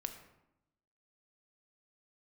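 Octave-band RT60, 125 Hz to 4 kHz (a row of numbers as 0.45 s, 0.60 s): 1.1 s, 1.1 s, 0.85 s, 0.85 s, 0.70 s, 0.55 s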